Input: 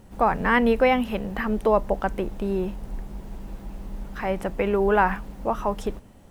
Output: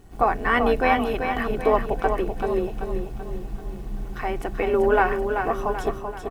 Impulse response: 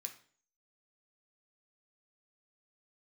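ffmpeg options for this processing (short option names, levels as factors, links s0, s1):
-filter_complex "[0:a]aecho=1:1:2.7:0.9,tremolo=f=170:d=0.571,asplit=2[s0][s1];[s1]aecho=0:1:385|770|1155|1540|1925|2310:0.473|0.222|0.105|0.0491|0.0231|0.0109[s2];[s0][s2]amix=inputs=2:normalize=0"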